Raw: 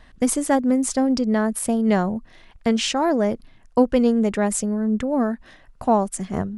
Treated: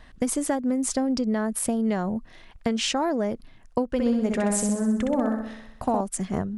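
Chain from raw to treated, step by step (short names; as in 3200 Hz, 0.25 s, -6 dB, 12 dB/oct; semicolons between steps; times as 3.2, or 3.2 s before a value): compressor 10:1, threshold -21 dBFS, peak gain reduction 11 dB; 3.89–6.01 flutter echo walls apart 10.9 m, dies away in 0.8 s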